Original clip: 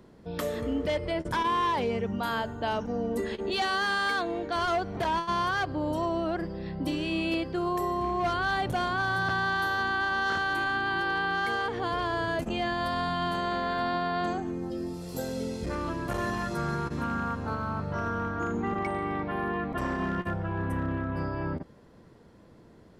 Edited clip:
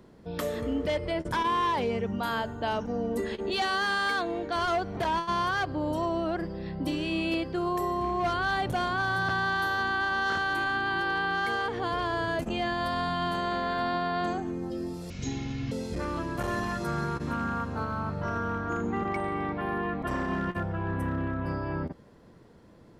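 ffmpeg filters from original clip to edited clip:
-filter_complex "[0:a]asplit=3[a][b][c];[a]atrim=end=15.104[d];[b]atrim=start=15.1:end=15.42,asetpts=PTS-STARTPTS,asetrate=22932,aresample=44100,atrim=end_sample=27138,asetpts=PTS-STARTPTS[e];[c]atrim=start=15.416[f];[d][e]acrossfade=d=0.004:c1=hsin:c2=hsin[g];[g][f]acrossfade=d=0.004:c1=hsin:c2=hsin"

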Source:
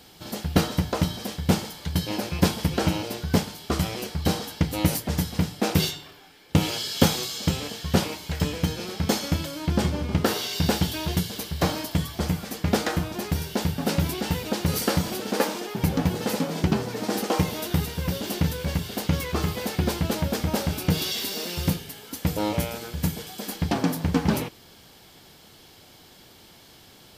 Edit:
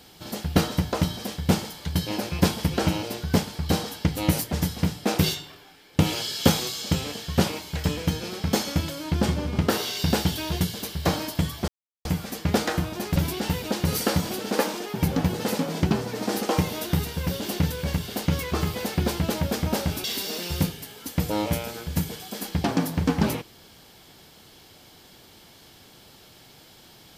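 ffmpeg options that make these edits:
-filter_complex "[0:a]asplit=5[a][b][c][d][e];[a]atrim=end=3.552[f];[b]atrim=start=4.108:end=12.24,asetpts=PTS-STARTPTS,afade=t=out:st=8.128:d=0.004:c=hsin,apad=pad_dur=0.37[g];[c]atrim=start=12.24:end=13.352,asetpts=PTS-STARTPTS,afade=t=in:d=0.004:c=hsin[h];[d]atrim=start=13.968:end=20.852[i];[e]atrim=start=21.108[j];[g][h]concat=n=2:v=0:a=1[k];[f][k]acrossfade=d=0.004:c1=hsin:c2=hsin[l];[l][i]acrossfade=d=0.004:c1=hsin:c2=hsin[m];[m][j]acrossfade=d=0.004:c1=hsin:c2=hsin"

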